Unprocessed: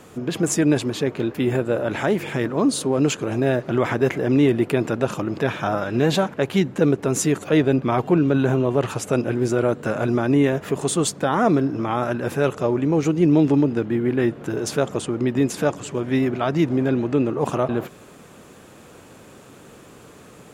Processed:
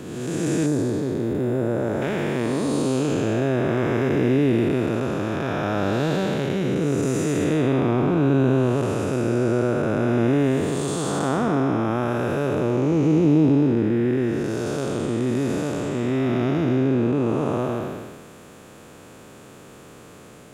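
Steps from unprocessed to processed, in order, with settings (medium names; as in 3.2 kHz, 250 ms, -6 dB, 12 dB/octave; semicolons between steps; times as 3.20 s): spectral blur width 454 ms; 0.66–2.02 s: peaking EQ 2.7 kHz -12.5 dB 1.3 oct; trim +2.5 dB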